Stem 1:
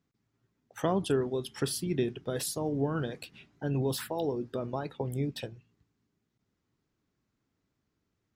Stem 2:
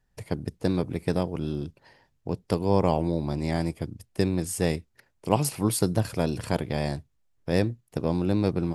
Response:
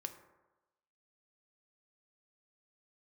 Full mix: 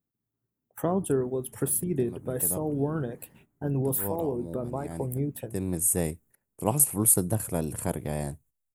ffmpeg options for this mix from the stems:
-filter_complex "[0:a]equalizer=frequency=5700:width=0.48:gain=-11,volume=2.5dB,asplit=2[link_01][link_02];[1:a]adelay=1350,volume=-3dB[link_03];[link_02]apad=whole_len=445124[link_04];[link_03][link_04]sidechaincompress=threshold=-43dB:ratio=4:attack=33:release=256[link_05];[link_01][link_05]amix=inputs=2:normalize=0,highshelf=frequency=2400:gain=-11,agate=range=-11dB:threshold=-55dB:ratio=16:detection=peak,aexciter=amount=15.5:drive=6:freq=7300"

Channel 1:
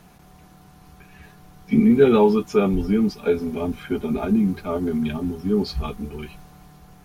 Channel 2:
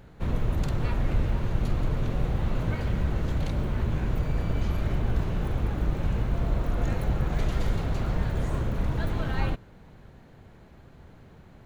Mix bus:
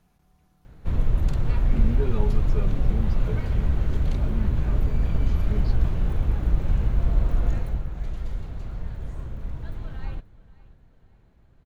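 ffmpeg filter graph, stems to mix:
ffmpeg -i stem1.wav -i stem2.wav -filter_complex "[0:a]volume=-17.5dB[link_01];[1:a]adelay=650,volume=-3dB,afade=type=out:start_time=7.39:duration=0.48:silence=0.334965,asplit=2[link_02][link_03];[link_03]volume=-20.5dB,aecho=0:1:532|1064|1596|2128|2660:1|0.39|0.152|0.0593|0.0231[link_04];[link_01][link_02][link_04]amix=inputs=3:normalize=0,lowshelf=frequency=83:gain=11.5" out.wav

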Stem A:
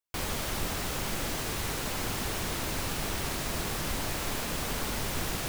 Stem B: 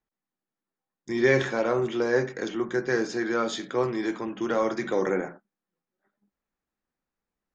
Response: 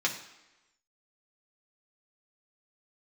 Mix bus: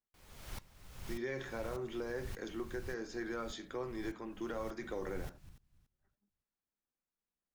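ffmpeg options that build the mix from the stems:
-filter_complex "[0:a]asubboost=boost=10:cutoff=150,aeval=exprs='val(0)*pow(10,-27*if(lt(mod(-1.7*n/s,1),2*abs(-1.7)/1000),1-mod(-1.7*n/s,1)/(2*abs(-1.7)/1000),(mod(-1.7*n/s,1)-2*abs(-1.7)/1000)/(1-2*abs(-1.7)/1000))/20)':channel_layout=same,volume=-6.5dB,afade=type=out:start_time=2.66:duration=0.51:silence=0.316228,afade=type=in:start_time=4.38:duration=0.58:silence=0.421697,asplit=3[link_01][link_02][link_03];[link_02]volume=-19dB[link_04];[link_03]volume=-18dB[link_05];[1:a]volume=-11.5dB[link_06];[2:a]atrim=start_sample=2205[link_07];[link_04][link_07]afir=irnorm=-1:irlink=0[link_08];[link_05]aecho=0:1:286|572|858|1144:1|0.24|0.0576|0.0138[link_09];[link_01][link_06][link_08][link_09]amix=inputs=4:normalize=0,alimiter=level_in=6dB:limit=-24dB:level=0:latency=1:release=284,volume=-6dB"

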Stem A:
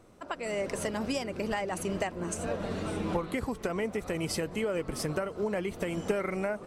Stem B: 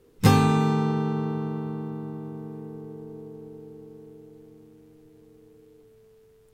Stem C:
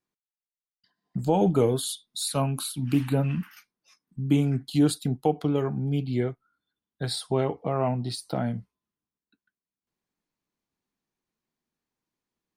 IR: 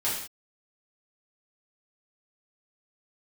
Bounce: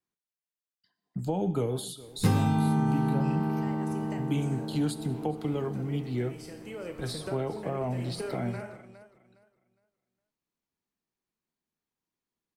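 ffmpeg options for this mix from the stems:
-filter_complex "[0:a]adelay=2100,volume=-6dB,afade=type=in:start_time=6.52:duration=0.63:silence=0.421697,asplit=3[link_01][link_02][link_03];[link_02]volume=-13dB[link_04];[link_03]volume=-15.5dB[link_05];[1:a]adelay=2000,volume=-2dB,asplit=2[link_06][link_07];[link_07]volume=-5.5dB[link_08];[2:a]volume=-5dB,asplit=4[link_09][link_10][link_11][link_12];[link_10]volume=-20.5dB[link_13];[link_11]volume=-22dB[link_14];[link_12]apad=whole_len=386639[link_15];[link_01][link_15]sidechaincompress=threshold=-32dB:ratio=8:attack=16:release=1190[link_16];[3:a]atrim=start_sample=2205[link_17];[link_04][link_08][link_13]amix=inputs=3:normalize=0[link_18];[link_18][link_17]afir=irnorm=-1:irlink=0[link_19];[link_05][link_14]amix=inputs=2:normalize=0,aecho=0:1:411|822|1233|1644:1|0.26|0.0676|0.0176[link_20];[link_16][link_06][link_09][link_19][link_20]amix=inputs=5:normalize=0,acrossover=split=190|600[link_21][link_22][link_23];[link_21]acompressor=threshold=-25dB:ratio=4[link_24];[link_22]acompressor=threshold=-30dB:ratio=4[link_25];[link_23]acompressor=threshold=-37dB:ratio=4[link_26];[link_24][link_25][link_26]amix=inputs=3:normalize=0"

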